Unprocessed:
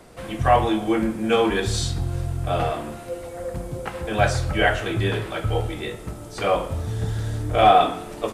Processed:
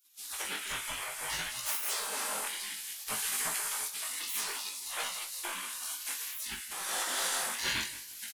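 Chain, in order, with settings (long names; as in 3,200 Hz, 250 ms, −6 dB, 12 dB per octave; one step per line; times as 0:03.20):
stylus tracing distortion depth 0.058 ms
camcorder AGC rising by 17 dB per second
high-shelf EQ 6,600 Hz +5.5 dB
notch filter 3,700 Hz, Q 27
in parallel at −2 dB: brickwall limiter −12 dBFS, peak gain reduction 10 dB
on the sum: gate on every frequency bin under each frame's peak −30 dB weak
parametric band 11,000 Hz +3.5 dB 0.49 octaves
double-tracking delay 42 ms −9 dB
on a send: repeating echo 177 ms, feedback 24%, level −16 dB
on the sum: chorus effect 0.59 Hz, delay 16.5 ms, depth 7.7 ms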